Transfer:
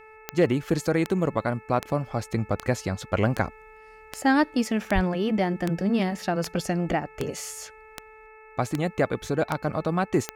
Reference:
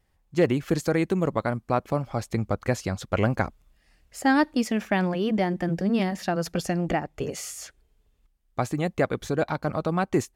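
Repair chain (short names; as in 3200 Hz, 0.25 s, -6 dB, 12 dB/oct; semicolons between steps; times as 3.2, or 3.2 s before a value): de-click; de-hum 435.8 Hz, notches 6; 4.94–5.06 HPF 140 Hz 24 dB/oct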